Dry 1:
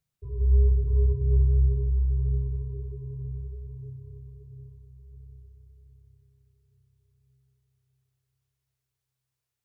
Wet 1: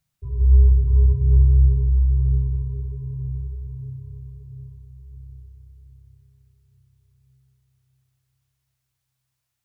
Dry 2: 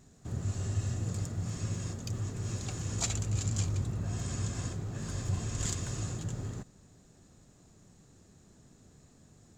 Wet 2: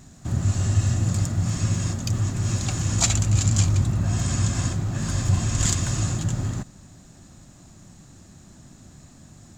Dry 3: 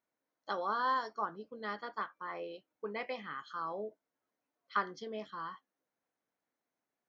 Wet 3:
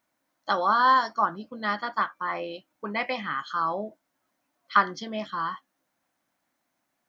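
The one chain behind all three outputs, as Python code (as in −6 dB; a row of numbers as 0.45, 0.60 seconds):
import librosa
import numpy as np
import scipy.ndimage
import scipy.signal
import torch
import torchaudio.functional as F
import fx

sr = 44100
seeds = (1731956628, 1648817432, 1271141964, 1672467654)

y = fx.peak_eq(x, sr, hz=440.0, db=-14.5, octaves=0.29)
y = librosa.util.normalize(y) * 10.0 ** (-6 / 20.0)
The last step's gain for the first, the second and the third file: +6.5, +12.0, +12.5 decibels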